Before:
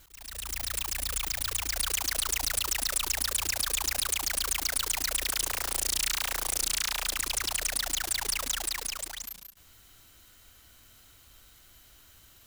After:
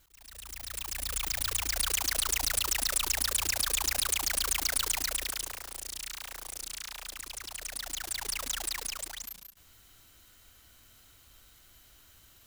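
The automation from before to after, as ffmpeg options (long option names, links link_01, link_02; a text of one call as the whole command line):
ffmpeg -i in.wav -af "volume=9dB,afade=type=in:start_time=0.62:duration=0.76:silence=0.398107,afade=type=out:start_time=4.86:duration=0.77:silence=0.281838,afade=type=in:start_time=7.49:duration=1.23:silence=0.354813" out.wav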